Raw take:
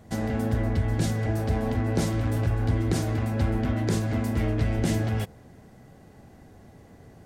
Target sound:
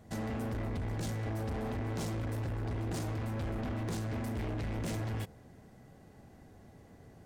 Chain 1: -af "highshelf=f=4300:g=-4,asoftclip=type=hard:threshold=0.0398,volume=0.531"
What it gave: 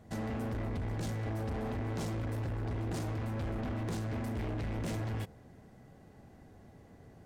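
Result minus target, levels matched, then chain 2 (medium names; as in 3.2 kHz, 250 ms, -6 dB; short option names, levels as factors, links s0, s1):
8 kHz band -2.5 dB
-af "asoftclip=type=hard:threshold=0.0398,volume=0.531"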